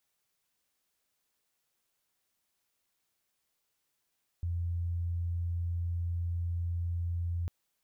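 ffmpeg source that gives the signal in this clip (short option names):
-f lavfi -i "sine=f=86:d=3.05:r=44100,volume=-11.94dB"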